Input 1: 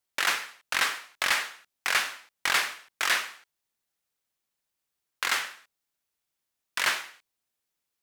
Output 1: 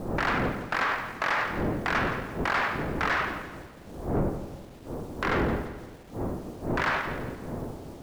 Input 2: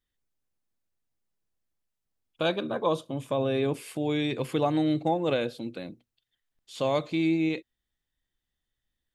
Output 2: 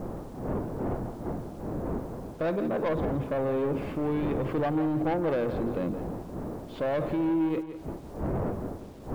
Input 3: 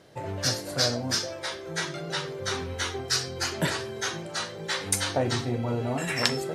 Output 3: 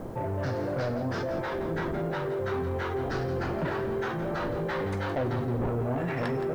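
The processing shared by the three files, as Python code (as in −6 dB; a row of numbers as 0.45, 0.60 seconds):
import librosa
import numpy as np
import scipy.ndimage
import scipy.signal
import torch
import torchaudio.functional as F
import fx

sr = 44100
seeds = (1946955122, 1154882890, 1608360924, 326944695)

p1 = fx.dmg_wind(x, sr, seeds[0], corner_hz=440.0, level_db=-42.0)
p2 = scipy.signal.sosfilt(scipy.signal.butter(2, 1200.0, 'lowpass', fs=sr, output='sos'), p1)
p3 = fx.over_compress(p2, sr, threshold_db=-39.0, ratio=-1.0)
p4 = p2 + (p3 * 10.0 ** (0.0 / 20.0))
p5 = fx.quant_dither(p4, sr, seeds[1], bits=10, dither='none')
p6 = 10.0 ** (-25.0 / 20.0) * np.tanh(p5 / 10.0 ** (-25.0 / 20.0))
p7 = p6 + fx.echo_feedback(p6, sr, ms=169, feedback_pct=39, wet_db=-11.0, dry=0)
y = p7 * 10.0 ** (-30 / 20.0) / np.sqrt(np.mean(np.square(p7)))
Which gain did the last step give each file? +6.0, +1.5, +1.0 decibels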